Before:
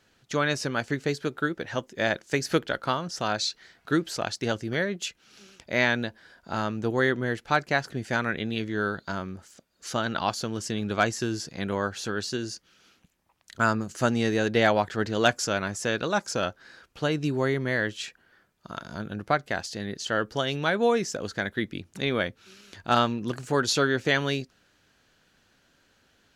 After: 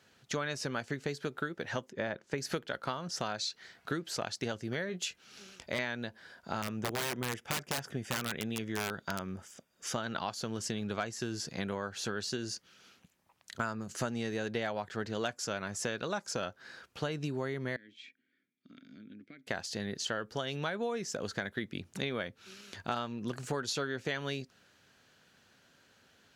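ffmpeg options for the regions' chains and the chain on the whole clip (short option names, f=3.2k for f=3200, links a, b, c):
-filter_complex "[0:a]asettb=1/sr,asplit=3[a][b][c];[a]atrim=end=1.904[d];[b]atrim=start=1.9:end=2.38,asetpts=PTS-STARTPTS,afade=t=in:d=0.004:c=qsin,afade=t=out:st=0.476:d=0.004:c=qsin,lowpass=f=1.4k:p=1,bandreject=f=710:w=11[e];[c]atrim=start=2.376[f];[d][e]acrossfade=d=0.004:c1=hsin:c2=qsin[g];[g][f]acrossfade=d=0.004:c1=qsin:c2=hsin,asettb=1/sr,asplit=3[h][i][j];[h]atrim=end=4.874[k];[i]atrim=start=4.87:end=5.79,asetpts=PTS-STARTPTS,afade=t=in:d=0.004:c=qsin,afade=t=out:st=0.916:d=0.004:c=qsin,asubboost=boost=9:cutoff=74,aeval=exprs='0.112*(abs(mod(val(0)/0.112+3,4)-2)-1)':c=same,asplit=2[l][m];[m]adelay=22,volume=-9.5dB[n];[l][n]amix=inputs=2:normalize=0,atrim=end_sample=40572[o];[j]atrim=start=5.786[p];[k][o]acrossfade=d=0.004:c1=hsin:c2=qsin[q];[q][p]acrossfade=d=0.004:c1=qsin:c2=hsin,asettb=1/sr,asplit=3[r][s][t];[r]atrim=end=6.624[u];[s]atrim=start=6.62:end=9.93,asetpts=PTS-STARTPTS,afade=t=in:d=0.004:c=qsin,afade=t=out:st=3.306:d=0.004:c=qsin,asuperstop=centerf=4200:order=4:qfactor=5.6,aeval=exprs='(mod(8.91*val(0)+1,2)-1)/8.91':c=same[v];[t]atrim=start=9.926[w];[u][v]acrossfade=d=0.004:c1=hsin:c2=qsin[x];[x][w]acrossfade=d=0.004:c1=qsin:c2=hsin,asettb=1/sr,asplit=3[y][z][aa];[y]atrim=end=17.764[ab];[z]atrim=start=17.76:end=19.47,asetpts=PTS-STARTPTS,afade=t=in:d=0.004:c=qsin,afade=t=out:st=1.706:d=0.004:c=qsin,bandreject=f=3k:w=8.4,acompressor=threshold=-33dB:ratio=2.5:attack=3.2:release=140:knee=1:detection=peak,asplit=3[ac][ad][ae];[ac]bandpass=f=270:t=q:w=8,volume=0dB[af];[ad]bandpass=f=2.29k:t=q:w=8,volume=-6dB[ag];[ae]bandpass=f=3.01k:t=q:w=8,volume=-9dB[ah];[af][ag][ah]amix=inputs=3:normalize=0[ai];[aa]atrim=start=19.466[aj];[ab][ai]acrossfade=d=0.004:c1=hsin:c2=qsin[ak];[ak][aj]acrossfade=d=0.004:c1=qsin:c2=hsin,highpass=84,equalizer=f=310:t=o:w=0.21:g=-5,acompressor=threshold=-32dB:ratio=6"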